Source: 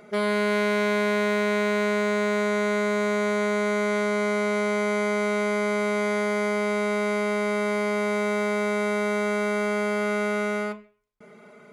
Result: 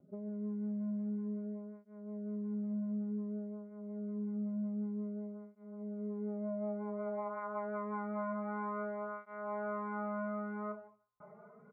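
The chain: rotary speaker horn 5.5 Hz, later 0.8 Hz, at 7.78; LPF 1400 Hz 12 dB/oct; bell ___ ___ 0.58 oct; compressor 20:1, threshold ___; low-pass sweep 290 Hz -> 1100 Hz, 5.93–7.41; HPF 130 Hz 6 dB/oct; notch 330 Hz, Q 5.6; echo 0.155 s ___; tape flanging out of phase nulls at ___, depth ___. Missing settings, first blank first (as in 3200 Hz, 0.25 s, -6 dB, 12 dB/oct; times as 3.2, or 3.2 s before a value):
380 Hz, -10.5 dB, -34 dBFS, -15 dB, 0.27 Hz, 4.6 ms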